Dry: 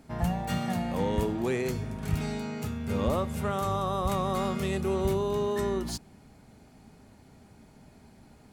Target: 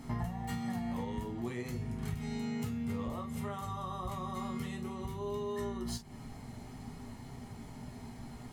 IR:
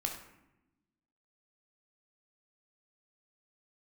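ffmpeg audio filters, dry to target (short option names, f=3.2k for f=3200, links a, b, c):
-filter_complex "[0:a]acompressor=threshold=-42dB:ratio=12[a];[1:a]atrim=start_sample=2205,atrim=end_sample=3528,asetrate=66150,aresample=44100[b];[a][b]afir=irnorm=-1:irlink=0,volume=8.5dB"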